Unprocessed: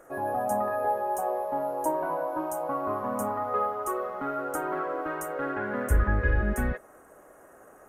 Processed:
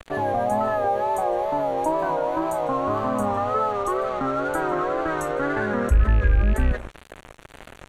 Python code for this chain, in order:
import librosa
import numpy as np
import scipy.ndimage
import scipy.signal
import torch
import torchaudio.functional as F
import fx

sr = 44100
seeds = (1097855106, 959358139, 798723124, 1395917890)

p1 = fx.rattle_buzz(x, sr, strikes_db=-25.0, level_db=-27.0)
p2 = p1 + fx.echo_single(p1, sr, ms=153, db=-23.0, dry=0)
p3 = np.sign(p2) * np.maximum(np.abs(p2) - 10.0 ** (-47.0 / 20.0), 0.0)
p4 = fx.air_absorb(p3, sr, metres=57.0)
p5 = fx.notch(p4, sr, hz=5100.0, q=5.5)
p6 = fx.wow_flutter(p5, sr, seeds[0], rate_hz=2.1, depth_cents=75.0)
p7 = fx.low_shelf(p6, sr, hz=100.0, db=11.5)
p8 = fx.env_flatten(p7, sr, amount_pct=50)
y = F.gain(torch.from_numpy(p8), -3.5).numpy()